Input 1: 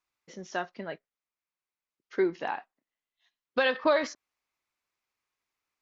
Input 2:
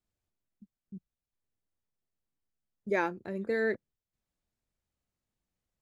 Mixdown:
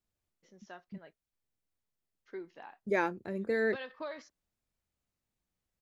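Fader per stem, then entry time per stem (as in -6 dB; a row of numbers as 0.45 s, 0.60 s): -17.0 dB, -0.5 dB; 0.15 s, 0.00 s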